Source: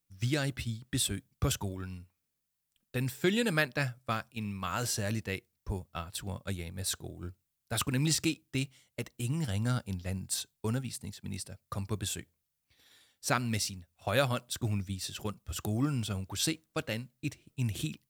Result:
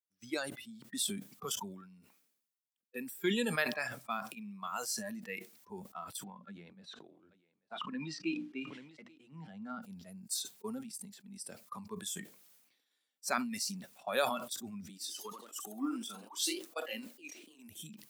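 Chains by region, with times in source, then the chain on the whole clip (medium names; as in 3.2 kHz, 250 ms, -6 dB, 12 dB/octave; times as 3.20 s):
6.24–9.82 s: band-pass 100–3100 Hz + hum notches 60/120/180/240/300 Hz + delay 837 ms -20.5 dB
14.89–17.69 s: Chebyshev high-pass 270 Hz, order 3 + ever faster or slower copies 107 ms, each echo +1 st, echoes 3, each echo -6 dB
whole clip: spectral noise reduction 16 dB; high-pass 210 Hz 24 dB/octave; decay stretcher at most 59 dB/s; trim -3.5 dB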